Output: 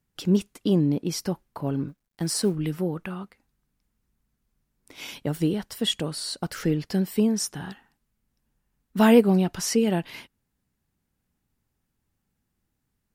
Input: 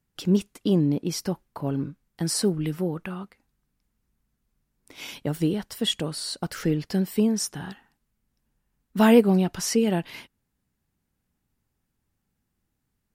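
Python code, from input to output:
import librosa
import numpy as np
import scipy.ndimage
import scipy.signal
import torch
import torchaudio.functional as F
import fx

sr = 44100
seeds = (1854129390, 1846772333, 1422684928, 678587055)

y = fx.law_mismatch(x, sr, coded='A', at=(1.88, 2.55))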